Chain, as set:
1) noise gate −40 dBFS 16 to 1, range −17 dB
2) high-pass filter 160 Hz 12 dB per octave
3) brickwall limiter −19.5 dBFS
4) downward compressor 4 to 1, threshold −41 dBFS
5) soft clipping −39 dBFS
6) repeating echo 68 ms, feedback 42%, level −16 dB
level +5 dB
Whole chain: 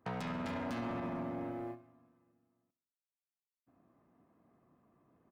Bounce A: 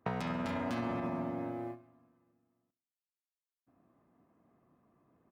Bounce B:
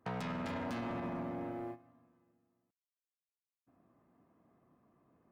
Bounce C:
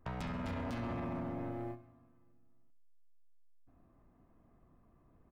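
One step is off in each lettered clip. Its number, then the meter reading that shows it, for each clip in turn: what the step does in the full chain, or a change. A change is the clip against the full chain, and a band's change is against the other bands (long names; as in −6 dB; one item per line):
5, distortion level −14 dB
6, echo-to-direct ratio −15.0 dB to none audible
2, 125 Hz band +5.5 dB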